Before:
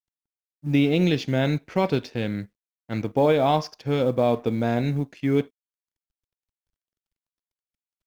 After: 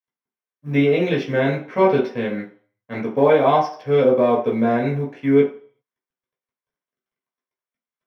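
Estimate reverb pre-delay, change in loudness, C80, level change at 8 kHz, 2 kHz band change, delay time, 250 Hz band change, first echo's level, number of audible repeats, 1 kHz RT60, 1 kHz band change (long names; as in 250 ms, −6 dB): 3 ms, +4.5 dB, 14.0 dB, can't be measured, +5.5 dB, no echo audible, +3.0 dB, no echo audible, no echo audible, 0.45 s, +6.0 dB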